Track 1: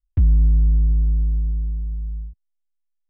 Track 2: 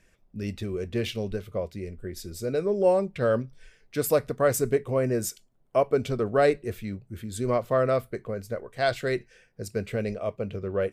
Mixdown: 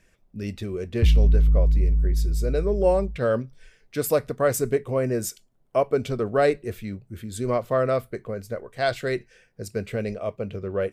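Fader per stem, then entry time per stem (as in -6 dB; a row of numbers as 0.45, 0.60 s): -2.0, +1.0 dB; 0.85, 0.00 s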